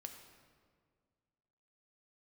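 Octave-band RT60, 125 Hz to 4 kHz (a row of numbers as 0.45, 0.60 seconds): 2.3, 2.2, 2.0, 1.8, 1.5, 1.2 seconds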